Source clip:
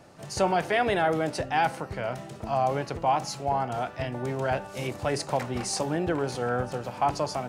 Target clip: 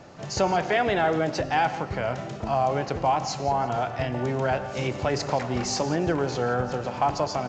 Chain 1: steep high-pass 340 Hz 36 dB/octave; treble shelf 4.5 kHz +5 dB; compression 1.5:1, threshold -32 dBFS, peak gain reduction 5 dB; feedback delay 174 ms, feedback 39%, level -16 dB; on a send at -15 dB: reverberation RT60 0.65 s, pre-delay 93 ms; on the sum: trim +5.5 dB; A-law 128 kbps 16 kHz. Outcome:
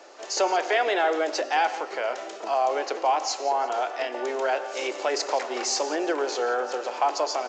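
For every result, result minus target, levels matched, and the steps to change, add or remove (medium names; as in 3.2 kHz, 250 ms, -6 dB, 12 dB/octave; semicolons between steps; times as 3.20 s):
250 Hz band -6.5 dB; 8 kHz band +4.5 dB
remove: steep high-pass 340 Hz 36 dB/octave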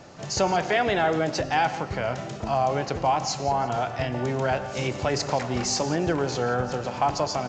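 8 kHz band +3.5 dB
change: treble shelf 4.5 kHz -2 dB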